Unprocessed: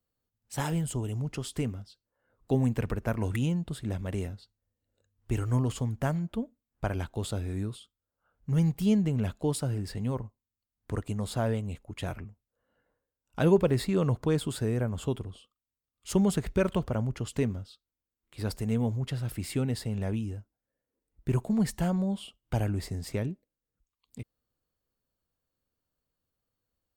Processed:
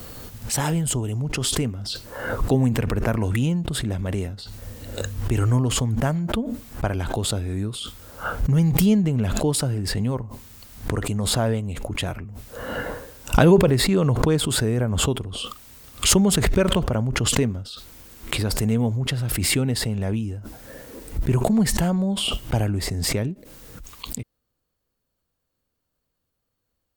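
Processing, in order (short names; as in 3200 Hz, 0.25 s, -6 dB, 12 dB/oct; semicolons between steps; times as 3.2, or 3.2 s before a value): backwards sustainer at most 21 dB/s; gain +6 dB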